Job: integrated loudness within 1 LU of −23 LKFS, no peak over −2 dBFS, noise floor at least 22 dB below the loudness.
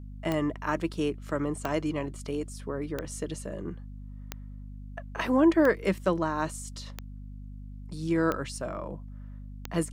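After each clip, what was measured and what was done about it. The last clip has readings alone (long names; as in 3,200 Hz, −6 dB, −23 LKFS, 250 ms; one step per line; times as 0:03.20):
number of clicks 8; mains hum 50 Hz; hum harmonics up to 250 Hz; level of the hum −39 dBFS; integrated loudness −30.0 LKFS; sample peak −12.0 dBFS; target loudness −23.0 LKFS
→ click removal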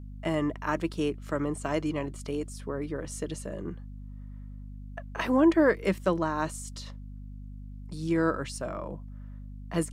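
number of clicks 0; mains hum 50 Hz; hum harmonics up to 250 Hz; level of the hum −39 dBFS
→ hum removal 50 Hz, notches 5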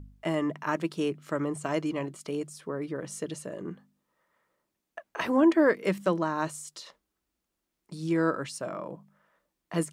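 mains hum none found; integrated loudness −29.5 LKFS; sample peak −12.5 dBFS; target loudness −23.0 LKFS
→ level +6.5 dB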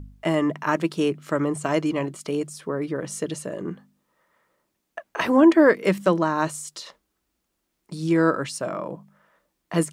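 integrated loudness −23.5 LKFS; sample peak −6.0 dBFS; background noise floor −77 dBFS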